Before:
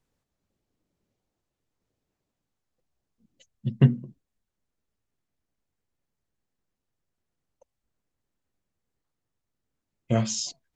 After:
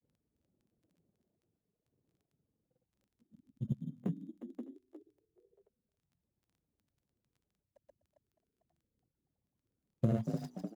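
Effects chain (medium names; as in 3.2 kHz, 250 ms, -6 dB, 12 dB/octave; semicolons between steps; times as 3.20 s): median filter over 41 samples; in parallel at -10 dB: sample-and-hold 13×; on the sum: compression 12:1, threshold -29 dBFS, peak gain reduction 20.5 dB; tilt shelf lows +6 dB, about 1.1 kHz; on a send: frequency-shifting echo 226 ms, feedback 57%, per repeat +33 Hz, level -5 dB; on the sum: reverb removal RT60 1 s; high-pass 88 Hz 12 dB/octave; treble shelf 6.2 kHz +8.5 dB; crackle 14 per s -57 dBFS; granulator 100 ms, grains 20 per s; trim -2.5 dB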